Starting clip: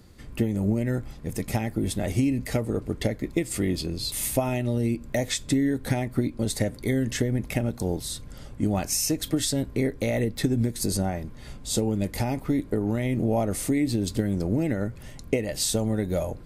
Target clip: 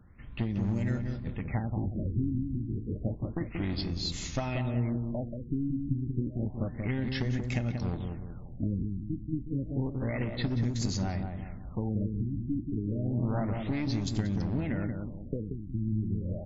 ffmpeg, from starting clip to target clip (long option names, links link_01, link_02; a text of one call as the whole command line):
ffmpeg -i in.wav -filter_complex "[0:a]aeval=exprs='clip(val(0),-1,0.0631)':channel_layout=same,equalizer=frequency=440:width=1:gain=-9,bandreject=frequency=352.5:width_type=h:width=4,bandreject=frequency=705:width_type=h:width=4,bandreject=frequency=1057.5:width_type=h:width=4,bandreject=frequency=1410:width_type=h:width=4,bandreject=frequency=1762.5:width_type=h:width=4,bandreject=frequency=2115:width_type=h:width=4,bandreject=frequency=2467.5:width_type=h:width=4,bandreject=frequency=2820:width_type=h:width=4,bandreject=frequency=3172.5:width_type=h:width=4,bandreject=frequency=3525:width_type=h:width=4,bandreject=frequency=3877.5:width_type=h:width=4,bandreject=frequency=4230:width_type=h:width=4,bandreject=frequency=4582.5:width_type=h:width=4,bandreject=frequency=4935:width_type=h:width=4,bandreject=frequency=5287.5:width_type=h:width=4,bandreject=frequency=5640:width_type=h:width=4,bandreject=frequency=5992.5:width_type=h:width=4,bandreject=frequency=6345:width_type=h:width=4,bandreject=frequency=6697.5:width_type=h:width=4,bandreject=frequency=7050:width_type=h:width=4,bandreject=frequency=7402.5:width_type=h:width=4,bandreject=frequency=7755:width_type=h:width=4,bandreject=frequency=8107.5:width_type=h:width=4,bandreject=frequency=8460:width_type=h:width=4,bandreject=frequency=8812.5:width_type=h:width=4,bandreject=frequency=9165:width_type=h:width=4,bandreject=frequency=9517.5:width_type=h:width=4,bandreject=frequency=9870:width_type=h:width=4,bandreject=frequency=10222.5:width_type=h:width=4,asplit=2[link_01][link_02];[link_02]adelay=183,lowpass=frequency=1100:poles=1,volume=-4dB,asplit=2[link_03][link_04];[link_04]adelay=183,lowpass=frequency=1100:poles=1,volume=0.47,asplit=2[link_05][link_06];[link_06]adelay=183,lowpass=frequency=1100:poles=1,volume=0.47,asplit=2[link_07][link_08];[link_08]adelay=183,lowpass=frequency=1100:poles=1,volume=0.47,asplit=2[link_09][link_10];[link_10]adelay=183,lowpass=frequency=1100:poles=1,volume=0.47,asplit=2[link_11][link_12];[link_12]adelay=183,lowpass=frequency=1100:poles=1,volume=0.47[link_13];[link_03][link_05][link_07][link_09][link_11][link_13]amix=inputs=6:normalize=0[link_14];[link_01][link_14]amix=inputs=2:normalize=0,afftfilt=real='re*lt(b*sr/1024,350*pow(7500/350,0.5+0.5*sin(2*PI*0.3*pts/sr)))':imag='im*lt(b*sr/1024,350*pow(7500/350,0.5+0.5*sin(2*PI*0.3*pts/sr)))':win_size=1024:overlap=0.75,volume=-3dB" out.wav